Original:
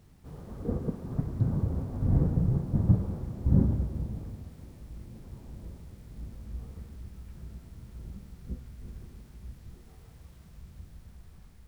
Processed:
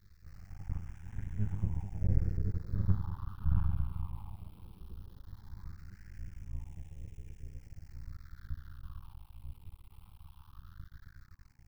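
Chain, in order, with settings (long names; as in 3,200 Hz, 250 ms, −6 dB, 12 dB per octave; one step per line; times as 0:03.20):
brick-wall band-stop 110–770 Hz
half-wave rectification
all-pass phaser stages 6, 0.18 Hz, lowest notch 460–1,200 Hz
on a send: delay with a band-pass on its return 1,004 ms, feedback 67%, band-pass 400 Hz, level −15.5 dB
on the sum: auto-filter bell 0.41 Hz 430–1,600 Hz +12 dB
level +1 dB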